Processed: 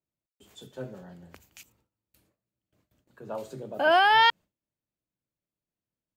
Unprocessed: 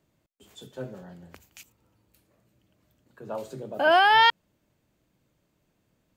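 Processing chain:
noise gate with hold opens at −55 dBFS
level −1.5 dB

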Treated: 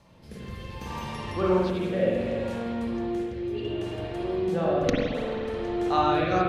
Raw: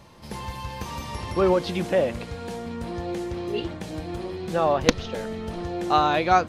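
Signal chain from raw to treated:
spring reverb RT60 1.8 s, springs 43/54 ms, chirp 55 ms, DRR −6 dB
rotating-speaker cabinet horn 0.65 Hz
level −6 dB

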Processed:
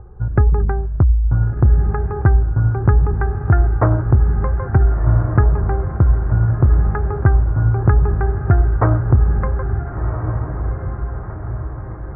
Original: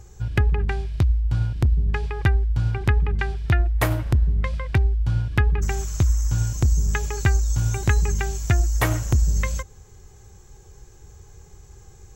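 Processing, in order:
elliptic low-pass filter 1,400 Hz, stop band 80 dB
on a send: feedback delay with all-pass diffusion 1,425 ms, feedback 52%, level −7 dB
on the sum: level +7 dB

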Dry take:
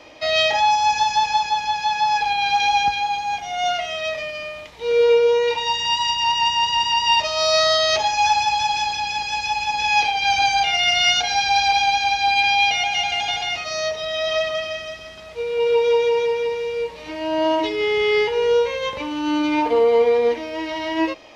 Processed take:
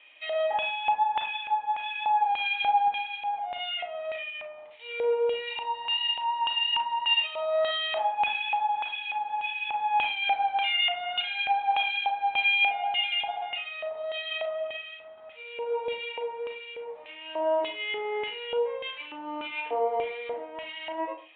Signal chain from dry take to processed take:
auto-filter band-pass square 1.7 Hz 770–2,700 Hz
on a send at −5 dB: convolution reverb RT60 0.35 s, pre-delay 28 ms
on the sum: downsampling to 8,000 Hz
level −4 dB

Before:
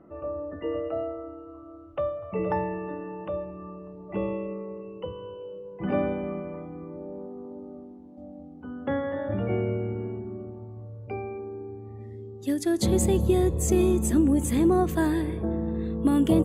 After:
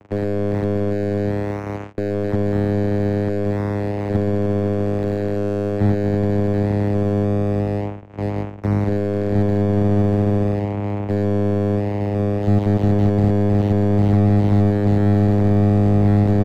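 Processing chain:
low shelf with overshoot 350 Hz −8 dB, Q 1.5
leveller curve on the samples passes 5
double-tracking delay 13 ms −13.5 dB
channel vocoder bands 4, saw 102 Hz
boost into a limiter +12.5 dB
slew-rate limiting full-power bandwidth 98 Hz
level −4.5 dB

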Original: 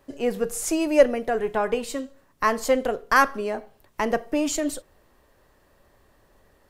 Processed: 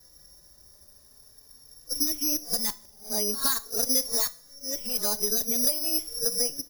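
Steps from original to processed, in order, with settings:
played backwards from end to start
bass and treble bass +7 dB, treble +7 dB
downward compressor 10 to 1, threshold −24 dBFS, peak gain reduction 15.5 dB
bad sample-rate conversion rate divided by 8×, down filtered, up zero stuff
coupled-rooms reverb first 0.37 s, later 1.7 s, from −21 dB, DRR 12.5 dB
barber-pole flanger 3.7 ms +0.46 Hz
level −5 dB

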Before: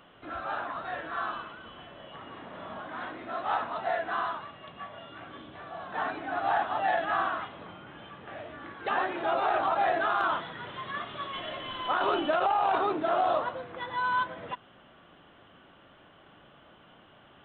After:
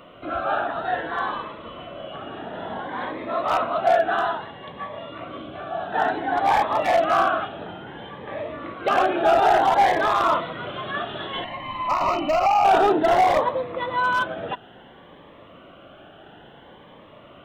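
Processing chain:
parametric band 590 Hz +6.5 dB 1.5 octaves
hard clipping −18.5 dBFS, distortion −16 dB
0:11.44–0:12.65: phaser with its sweep stopped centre 2,300 Hz, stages 8
phaser whose notches keep moving one way rising 0.58 Hz
level +8.5 dB

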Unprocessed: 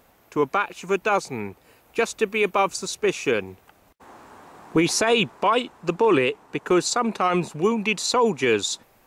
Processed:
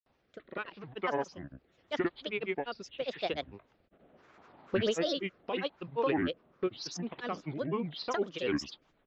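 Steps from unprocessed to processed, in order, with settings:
downsampling to 11,025 Hz
granular cloud, grains 20 per second, pitch spread up and down by 7 semitones
rotating-speaker cabinet horn 0.8 Hz, later 8 Hz, at 0:06.62
level −8.5 dB

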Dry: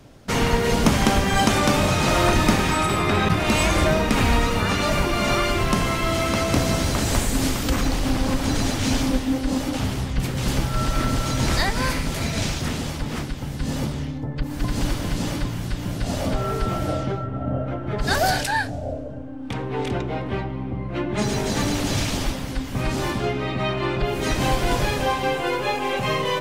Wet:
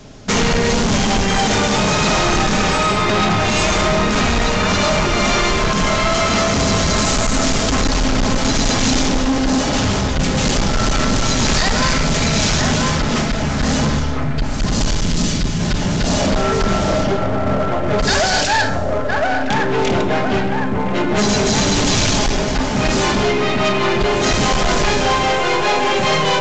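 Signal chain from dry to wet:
rectangular room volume 2,200 cubic metres, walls furnished, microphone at 1.4 metres
speech leveller within 3 dB 2 s
0:13.99–0:15.60: parametric band 830 Hz −11.5 dB 2.4 octaves
delay with a band-pass on its return 1,013 ms, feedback 49%, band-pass 890 Hz, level −4 dB
hard clipping −20 dBFS, distortion −9 dB
high-shelf EQ 5,900 Hz +10.5 dB
mains-hum notches 60/120 Hz
boost into a limiter +12.5 dB
level −5.5 dB
A-law companding 128 kbit/s 16,000 Hz

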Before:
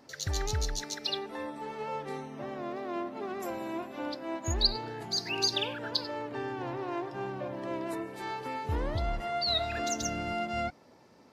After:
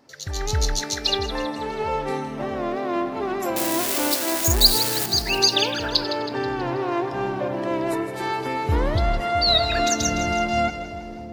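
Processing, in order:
0:03.56–0:05.06: spike at every zero crossing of −22 dBFS
automatic gain control gain up to 10.5 dB
on a send: echo with a time of its own for lows and highs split 600 Hz, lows 658 ms, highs 161 ms, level −11 dB

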